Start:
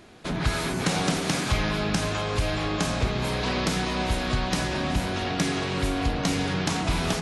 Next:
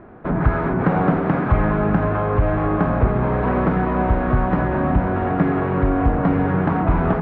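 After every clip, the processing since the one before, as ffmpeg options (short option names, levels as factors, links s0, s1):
-af "lowpass=f=1500:w=0.5412,lowpass=f=1500:w=1.3066,volume=2.66"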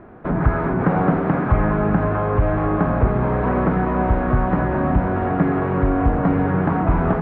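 -filter_complex "[0:a]acrossover=split=2500[s0][s1];[s1]acompressor=threshold=0.00316:ratio=4:attack=1:release=60[s2];[s0][s2]amix=inputs=2:normalize=0"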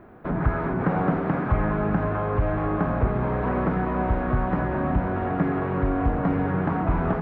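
-af "aemphasis=mode=production:type=50fm,volume=0.562"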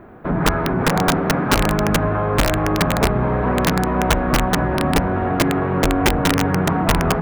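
-af "aeval=exprs='(mod(5.62*val(0)+1,2)-1)/5.62':c=same,volume=2"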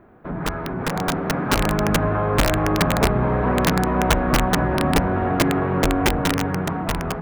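-af "dynaudnorm=f=310:g=9:m=3.76,volume=0.376"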